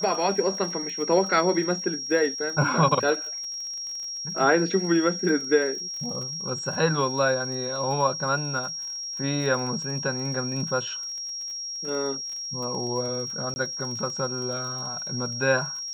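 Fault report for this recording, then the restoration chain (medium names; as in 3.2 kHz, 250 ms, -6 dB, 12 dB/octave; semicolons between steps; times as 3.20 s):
crackle 33 per s -34 dBFS
whine 5.6 kHz -31 dBFS
13.54–13.56 s: dropout 20 ms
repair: de-click; band-stop 5.6 kHz, Q 30; interpolate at 13.54 s, 20 ms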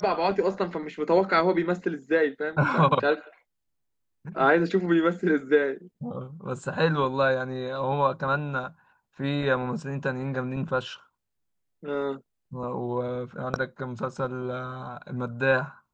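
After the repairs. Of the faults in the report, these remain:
nothing left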